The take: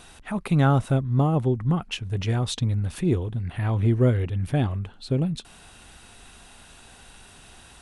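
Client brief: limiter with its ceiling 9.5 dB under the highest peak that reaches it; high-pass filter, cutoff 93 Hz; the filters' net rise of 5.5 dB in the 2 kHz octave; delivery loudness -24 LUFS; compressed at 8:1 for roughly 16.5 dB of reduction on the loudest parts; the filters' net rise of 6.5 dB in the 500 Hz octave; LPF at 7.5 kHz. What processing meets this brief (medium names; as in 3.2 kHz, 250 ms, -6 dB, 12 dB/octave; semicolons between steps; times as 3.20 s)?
high-pass 93 Hz; low-pass 7.5 kHz; peaking EQ 500 Hz +8 dB; peaking EQ 2 kHz +7 dB; compression 8:1, threshold -29 dBFS; trim +14.5 dB; peak limiter -13 dBFS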